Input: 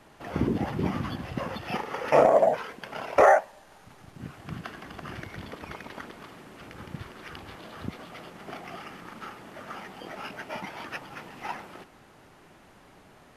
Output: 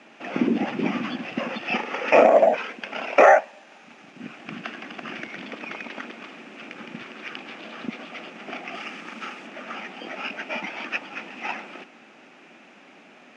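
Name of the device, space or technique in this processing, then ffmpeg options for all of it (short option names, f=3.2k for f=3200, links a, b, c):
television speaker: -filter_complex "[0:a]asettb=1/sr,asplit=3[a][b][c];[a]atrim=end=8.744[d];[b]atrim=start=8.74:end=9.47,asetpts=PTS-STARTPTS,afade=t=in:d=0.004:c=qsin,afade=t=out:st=0.726:d=0.004:c=qsin,highshelf=f=5.2k:g=8[e];[c]atrim=start=9.466[f];[d][e]acrossfade=d=0.004:c1=hsin:c2=qsin[g];[g][f]acrossfade=d=0.004:c1=qsin:c2=hsin,highpass=f=220:w=0.5412,highpass=f=220:w=1.3066,equalizer=f=230:t=q:w=4:g=5,equalizer=f=430:t=q:w=4:g=-4,equalizer=f=1k:t=q:w=4:g=-6,equalizer=f=2.5k:t=q:w=4:g=10,equalizer=f=4.3k:t=q:w=4:g=-5,lowpass=f=6.5k:w=0.5412,lowpass=f=6.5k:w=1.3066,volume=5dB"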